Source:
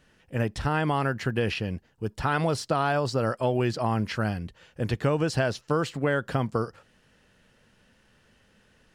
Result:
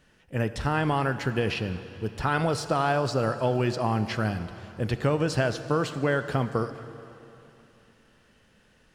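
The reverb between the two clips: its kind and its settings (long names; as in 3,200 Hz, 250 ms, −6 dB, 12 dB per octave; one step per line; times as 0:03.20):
dense smooth reverb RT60 3.1 s, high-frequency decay 0.9×, DRR 10.5 dB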